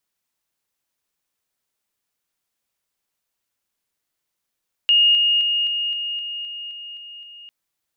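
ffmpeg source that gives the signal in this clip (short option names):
-f lavfi -i "aevalsrc='pow(10,(-11.5-3*floor(t/0.26))/20)*sin(2*PI*2850*t)':d=2.6:s=44100"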